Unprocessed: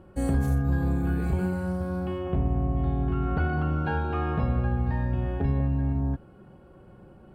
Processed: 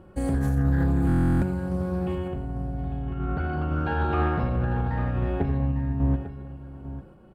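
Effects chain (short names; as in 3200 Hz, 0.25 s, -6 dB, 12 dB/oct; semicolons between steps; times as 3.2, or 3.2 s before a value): limiter -19 dBFS, peak gain reduction 5 dB; random-step tremolo; 2.13–3.2 compressor, threshold -32 dBFS, peak gain reduction 6.5 dB; on a send: tapped delay 88/849 ms -11/-12 dB; on the sum: stuck buffer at 1.07, samples 1024, times 14; Doppler distortion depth 0.22 ms; gain +4 dB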